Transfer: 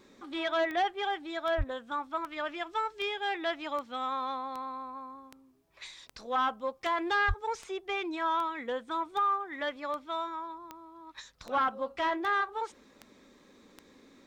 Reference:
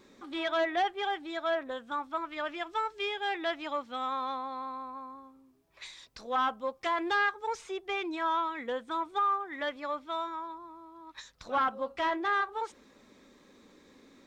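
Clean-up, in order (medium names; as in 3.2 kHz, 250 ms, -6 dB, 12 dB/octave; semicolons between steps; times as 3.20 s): de-click; 1.57–1.69 s: high-pass 140 Hz 24 dB/octave; 7.27–7.39 s: high-pass 140 Hz 24 dB/octave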